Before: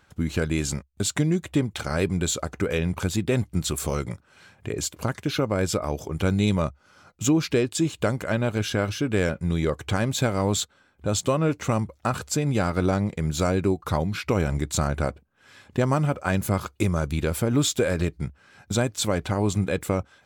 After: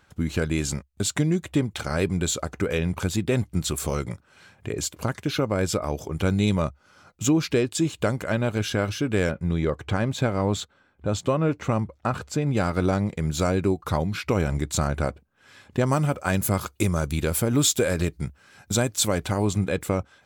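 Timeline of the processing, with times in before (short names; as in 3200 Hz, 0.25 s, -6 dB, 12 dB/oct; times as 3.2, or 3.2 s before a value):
9.31–12.57 high shelf 4800 Hz -12 dB
15.86–19.45 high shelf 6300 Hz +9 dB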